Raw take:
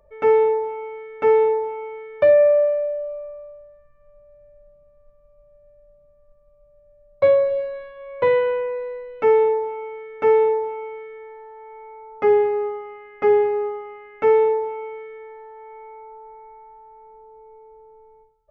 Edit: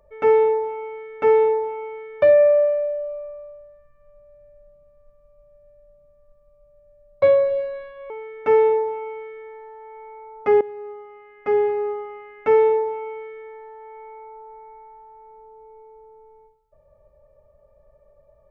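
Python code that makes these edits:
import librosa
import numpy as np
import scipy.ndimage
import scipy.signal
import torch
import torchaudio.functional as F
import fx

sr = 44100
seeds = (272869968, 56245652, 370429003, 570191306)

y = fx.edit(x, sr, fx.cut(start_s=8.1, length_s=1.76),
    fx.fade_in_from(start_s=12.37, length_s=1.46, floor_db=-17.5), tone=tone)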